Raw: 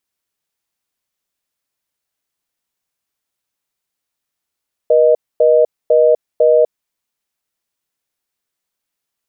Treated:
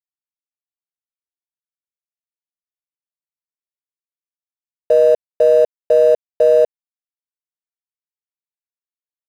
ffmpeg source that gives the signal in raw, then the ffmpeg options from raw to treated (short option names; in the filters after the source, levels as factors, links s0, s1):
-f lavfi -i "aevalsrc='0.316*(sin(2*PI*480*t)+sin(2*PI*620*t))*clip(min(mod(t,0.5),0.25-mod(t,0.5))/0.005,0,1)':d=1.91:s=44100"
-af "aeval=exprs='sgn(val(0))*max(abs(val(0))-0.0237,0)':c=same"